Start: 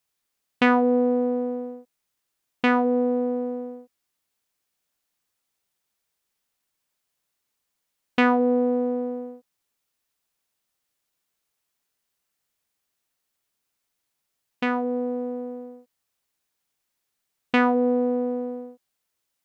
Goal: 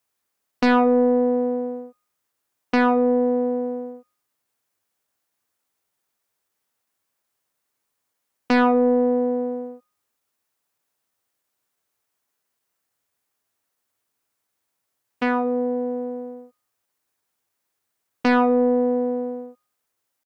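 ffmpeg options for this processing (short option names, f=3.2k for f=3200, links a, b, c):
-filter_complex "[0:a]highshelf=f=3k:g=11,aeval=exprs='0.841*(cos(1*acos(clip(val(0)/0.841,-1,1)))-cos(1*PI/2))+0.0841*(cos(3*acos(clip(val(0)/0.841,-1,1)))-cos(3*PI/2))':c=same,atempo=0.96,equalizer=f=99:t=o:w=0.45:g=14,bandreject=f=176.5:t=h:w=4,bandreject=f=353:t=h:w=4,bandreject=f=529.5:t=h:w=4,bandreject=f=706:t=h:w=4,bandreject=f=882.5:t=h:w=4,bandreject=f=1.059k:t=h:w=4,bandreject=f=1.2355k:t=h:w=4,bandreject=f=1.412k:t=h:w=4,bandreject=f=1.5885k:t=h:w=4,bandreject=f=1.765k:t=h:w=4,bandreject=f=1.9415k:t=h:w=4,bandreject=f=2.118k:t=h:w=4,bandreject=f=2.2945k:t=h:w=4,bandreject=f=2.471k:t=h:w=4,bandreject=f=2.6475k:t=h:w=4,bandreject=f=2.824k:t=h:w=4,bandreject=f=3.0005k:t=h:w=4,bandreject=f=3.177k:t=h:w=4,bandreject=f=3.3535k:t=h:w=4,bandreject=f=3.53k:t=h:w=4,bandreject=f=3.7065k:t=h:w=4,bandreject=f=3.883k:t=h:w=4,bandreject=f=4.0595k:t=h:w=4,bandreject=f=4.236k:t=h:w=4,bandreject=f=4.4125k:t=h:w=4,bandreject=f=4.589k:t=h:w=4,bandreject=f=4.7655k:t=h:w=4,bandreject=f=4.942k:t=h:w=4,acrossover=split=180|1800[a][b][c];[b]aeval=exprs='0.668*sin(PI/2*2.82*val(0)/0.668)':c=same[d];[a][d][c]amix=inputs=3:normalize=0,volume=-6dB"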